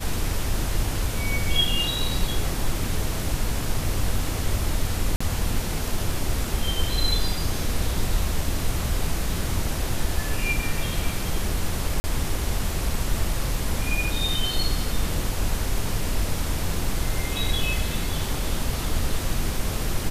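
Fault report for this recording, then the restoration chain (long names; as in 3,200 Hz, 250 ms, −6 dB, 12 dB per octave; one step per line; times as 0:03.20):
0:05.16–0:05.21: drop-out 45 ms
0:12.00–0:12.04: drop-out 40 ms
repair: repair the gap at 0:05.16, 45 ms
repair the gap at 0:12.00, 40 ms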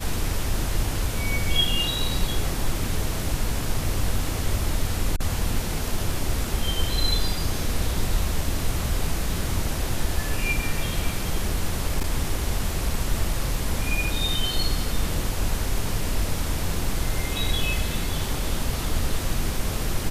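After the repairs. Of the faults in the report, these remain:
none of them is left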